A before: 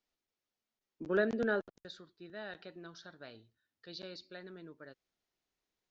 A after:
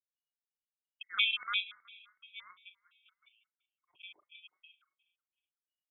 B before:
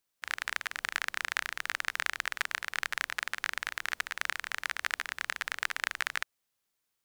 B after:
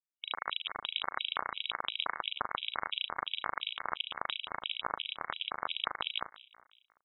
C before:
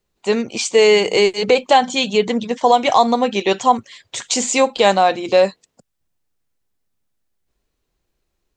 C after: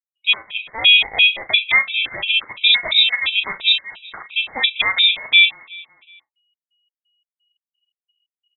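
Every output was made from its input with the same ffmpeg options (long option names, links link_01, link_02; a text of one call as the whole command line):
ffmpeg -i in.wav -filter_complex "[0:a]anlmdn=0.631,acrossover=split=2900[link_01][link_02];[link_02]acompressor=threshold=-29dB:ratio=4:attack=1:release=60[link_03];[link_01][link_03]amix=inputs=2:normalize=0,aeval=exprs='val(0)*sin(2*PI*1000*n/s)':channel_layout=same,asplit=2[link_04][link_05];[link_05]asoftclip=type=tanh:threshold=-15.5dB,volume=-11dB[link_06];[link_04][link_06]amix=inputs=2:normalize=0,lowpass=frequency=3300:width_type=q:width=0.5098,lowpass=frequency=3300:width_type=q:width=0.6013,lowpass=frequency=3300:width_type=q:width=0.9,lowpass=frequency=3300:width_type=q:width=2.563,afreqshift=-3900,asplit=2[link_07][link_08];[link_08]adelay=37,volume=-11dB[link_09];[link_07][link_09]amix=inputs=2:normalize=0,asplit=2[link_10][link_11];[link_11]aecho=0:1:186|372|558|744:0.106|0.0583|0.032|0.0176[link_12];[link_10][link_12]amix=inputs=2:normalize=0,afftfilt=real='re*gt(sin(2*PI*2.9*pts/sr)*(1-2*mod(floor(b*sr/1024/2200),2)),0)':imag='im*gt(sin(2*PI*2.9*pts/sr)*(1-2*mod(floor(b*sr/1024/2200),2)),0)':win_size=1024:overlap=0.75,volume=3dB" out.wav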